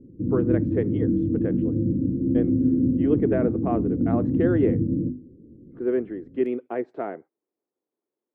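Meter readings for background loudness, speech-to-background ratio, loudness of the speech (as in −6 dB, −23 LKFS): −24.0 LKFS, −4.0 dB, −28.0 LKFS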